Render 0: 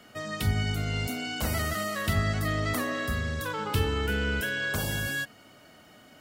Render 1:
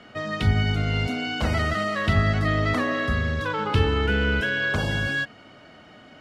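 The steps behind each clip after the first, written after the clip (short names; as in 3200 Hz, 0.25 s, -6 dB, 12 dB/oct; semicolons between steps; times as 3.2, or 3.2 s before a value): LPF 3700 Hz 12 dB/oct; gain +6 dB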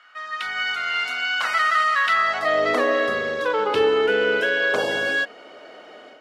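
high-pass sweep 1300 Hz -> 450 Hz, 2.15–2.69; AGC gain up to 9.5 dB; gain -5.5 dB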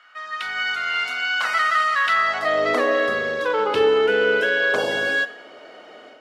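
reverb RT60 0.70 s, pre-delay 34 ms, DRR 15 dB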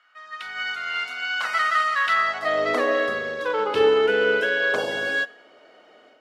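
upward expander 1.5:1, over -33 dBFS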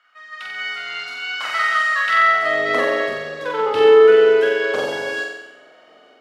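flutter echo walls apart 7.8 m, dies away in 0.92 s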